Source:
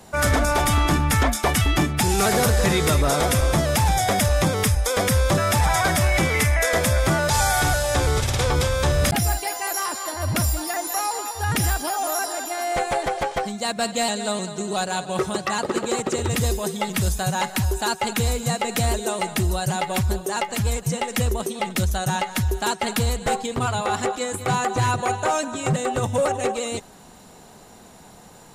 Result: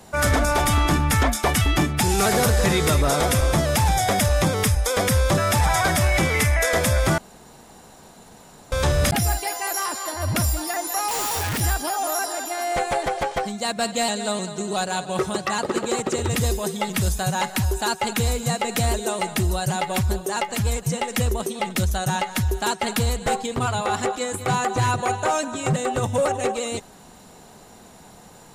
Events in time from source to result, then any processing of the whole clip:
0:07.18–0:08.72: fill with room tone
0:11.08–0:11.61: sign of each sample alone

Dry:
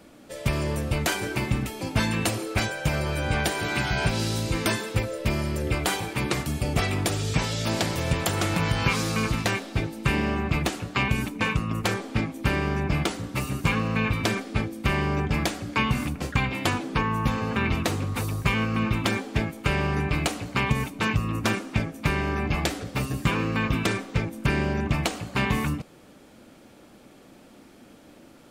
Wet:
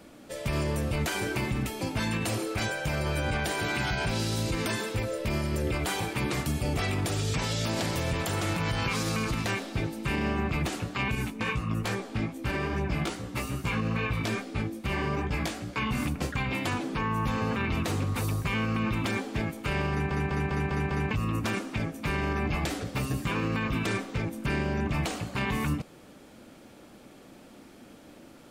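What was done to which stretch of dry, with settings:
0:11.15–0:15.92: chorus effect 2.4 Hz, delay 15.5 ms, depth 3.2 ms
0:19.91: stutter in place 0.20 s, 6 plays
whole clip: brickwall limiter −20 dBFS

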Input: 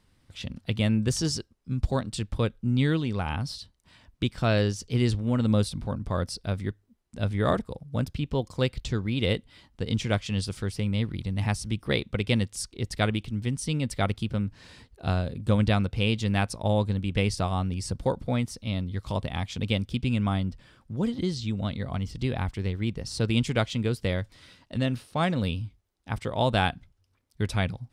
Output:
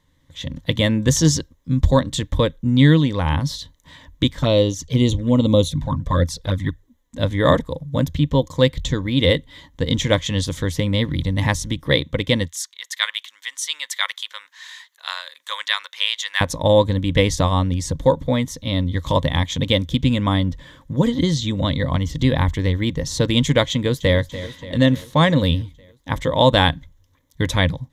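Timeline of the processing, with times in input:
0:04.35–0:07.19: flanger swept by the level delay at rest 4.8 ms, full sweep at −20.5 dBFS
0:12.48–0:16.41: high-pass filter 1,200 Hz 24 dB per octave
0:23.71–0:24.17: delay throw 290 ms, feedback 65%, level −15 dB
whole clip: EQ curve with evenly spaced ripples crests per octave 1.1, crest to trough 11 dB; automatic gain control gain up to 11 dB

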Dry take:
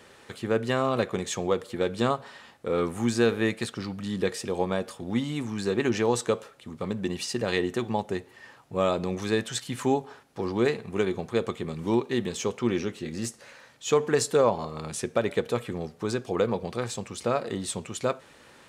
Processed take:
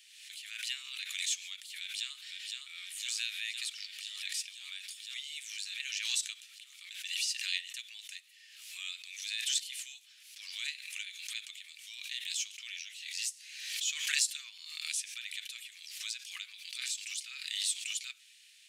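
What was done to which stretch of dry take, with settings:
0:01.78–0:02.70: delay throw 510 ms, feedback 75%, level −3.5 dB
whole clip: Butterworth high-pass 2,400 Hz 36 dB per octave; background raised ahead of every attack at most 47 dB per second

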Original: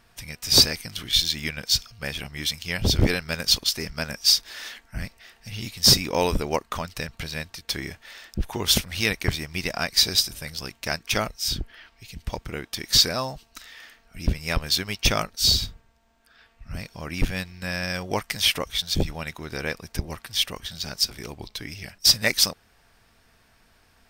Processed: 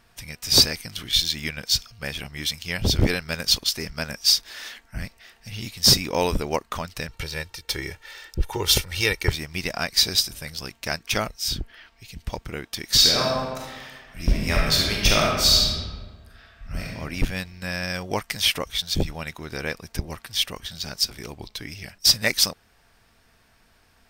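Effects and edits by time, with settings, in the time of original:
0:07.09–0:09.32: comb filter 2.2 ms
0:12.96–0:16.90: thrown reverb, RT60 1.5 s, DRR −3 dB

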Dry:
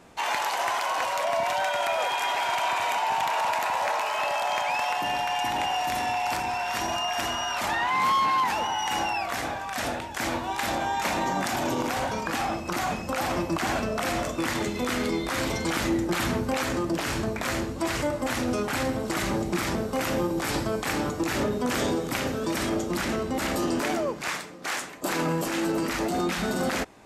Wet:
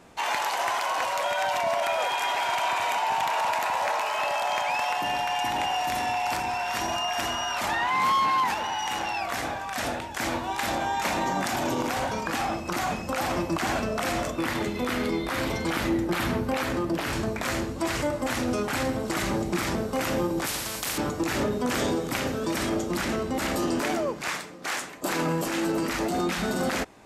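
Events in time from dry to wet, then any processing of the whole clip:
0:01.24–0:01.83: reverse
0:08.54–0:09.21: saturating transformer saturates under 1,500 Hz
0:14.30–0:17.13: parametric band 7,000 Hz −6 dB 1.1 octaves
0:20.46–0:20.98: every bin compressed towards the loudest bin 4 to 1

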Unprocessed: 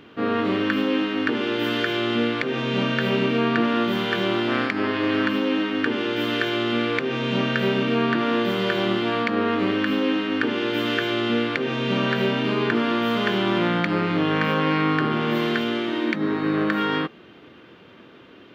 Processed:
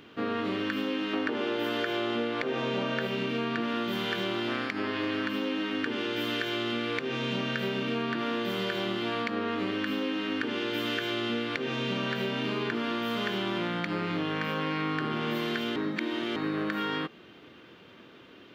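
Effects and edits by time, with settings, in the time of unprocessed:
0:01.13–0:03.07: parametric band 670 Hz +9.5 dB 2.2 octaves
0:15.76–0:16.36: reverse
whole clip: high-shelf EQ 3,700 Hz +7.5 dB; downward compressor, threshold −22 dBFS; level −5 dB

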